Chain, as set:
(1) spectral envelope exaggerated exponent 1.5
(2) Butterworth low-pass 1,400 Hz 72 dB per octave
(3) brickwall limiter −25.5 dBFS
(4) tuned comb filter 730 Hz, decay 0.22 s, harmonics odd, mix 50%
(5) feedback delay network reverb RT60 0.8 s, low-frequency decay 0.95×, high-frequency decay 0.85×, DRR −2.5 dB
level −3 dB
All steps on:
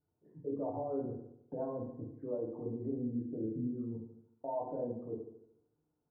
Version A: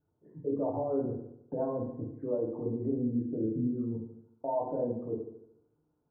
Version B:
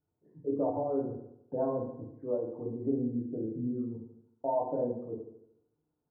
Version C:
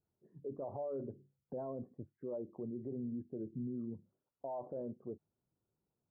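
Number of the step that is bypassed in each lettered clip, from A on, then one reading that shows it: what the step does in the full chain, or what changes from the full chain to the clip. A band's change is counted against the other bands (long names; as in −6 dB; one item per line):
4, change in integrated loudness +6.0 LU
3, average gain reduction 3.0 dB
5, change in crest factor −4.0 dB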